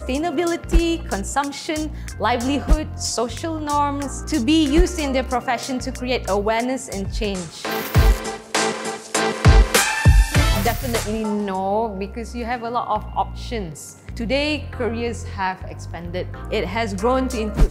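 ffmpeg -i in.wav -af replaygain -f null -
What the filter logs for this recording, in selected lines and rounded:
track_gain = +2.5 dB
track_peak = 0.480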